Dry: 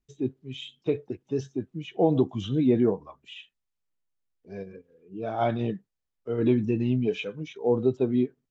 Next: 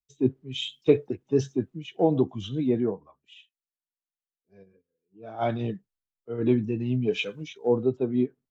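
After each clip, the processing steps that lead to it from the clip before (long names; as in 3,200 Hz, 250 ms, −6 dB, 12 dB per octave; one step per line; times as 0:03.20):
speech leveller within 4 dB 0.5 s
multiband upward and downward expander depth 70%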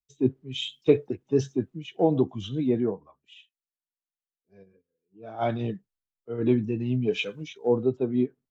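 no processing that can be heard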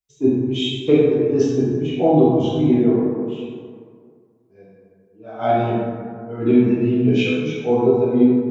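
dense smooth reverb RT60 2.1 s, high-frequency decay 0.4×, DRR −8.5 dB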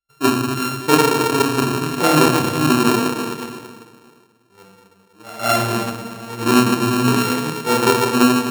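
samples sorted by size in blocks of 32 samples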